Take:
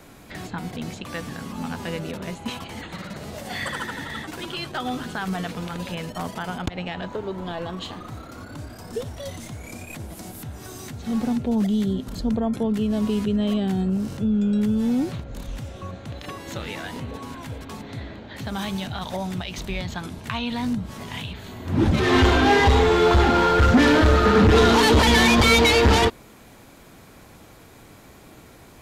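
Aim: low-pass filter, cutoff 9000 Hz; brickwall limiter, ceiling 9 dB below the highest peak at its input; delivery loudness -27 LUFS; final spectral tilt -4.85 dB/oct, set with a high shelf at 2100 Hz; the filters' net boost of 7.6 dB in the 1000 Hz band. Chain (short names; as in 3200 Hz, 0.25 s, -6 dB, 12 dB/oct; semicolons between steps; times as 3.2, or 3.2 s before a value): LPF 9000 Hz; bell 1000 Hz +8.5 dB; high shelf 2100 Hz +5 dB; gain -4 dB; limiter -15.5 dBFS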